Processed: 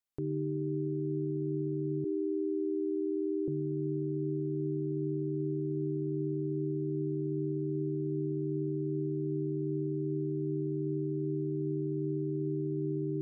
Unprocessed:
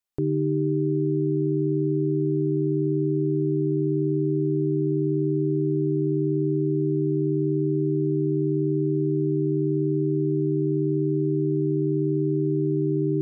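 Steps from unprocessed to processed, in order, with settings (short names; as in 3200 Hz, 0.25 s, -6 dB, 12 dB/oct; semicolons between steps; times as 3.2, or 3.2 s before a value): 2.04–3.48 steep high-pass 280 Hz 96 dB/oct; limiter -21.5 dBFS, peak gain reduction 6 dB; gain -5 dB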